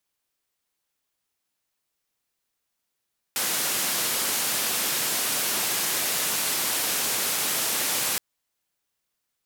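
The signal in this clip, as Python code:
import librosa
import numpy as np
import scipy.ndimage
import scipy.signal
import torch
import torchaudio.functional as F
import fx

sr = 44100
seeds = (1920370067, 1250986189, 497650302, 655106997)

y = fx.band_noise(sr, seeds[0], length_s=4.82, low_hz=150.0, high_hz=15000.0, level_db=-26.0)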